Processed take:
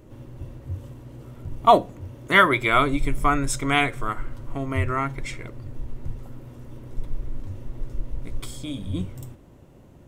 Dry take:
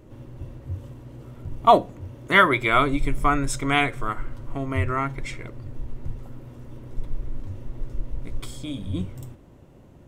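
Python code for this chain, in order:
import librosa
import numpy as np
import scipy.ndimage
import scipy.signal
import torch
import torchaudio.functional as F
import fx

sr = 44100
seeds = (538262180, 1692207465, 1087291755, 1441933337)

y = fx.high_shelf(x, sr, hz=6400.0, db=4.0)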